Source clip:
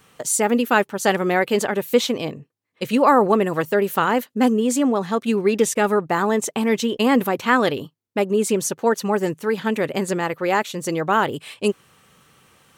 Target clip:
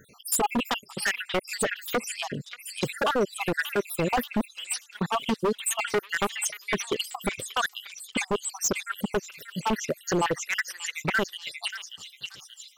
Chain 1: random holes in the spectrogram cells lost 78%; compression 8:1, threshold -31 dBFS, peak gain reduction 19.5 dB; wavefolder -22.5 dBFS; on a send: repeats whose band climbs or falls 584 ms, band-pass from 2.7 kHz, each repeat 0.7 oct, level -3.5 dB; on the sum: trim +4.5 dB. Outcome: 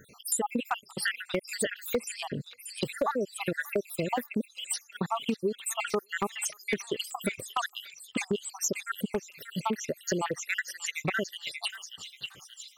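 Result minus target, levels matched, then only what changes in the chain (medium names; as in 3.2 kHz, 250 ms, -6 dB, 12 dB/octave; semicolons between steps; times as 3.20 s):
compression: peak gain reduction +8 dB
change: compression 8:1, threshold -22 dBFS, peak gain reduction 11.5 dB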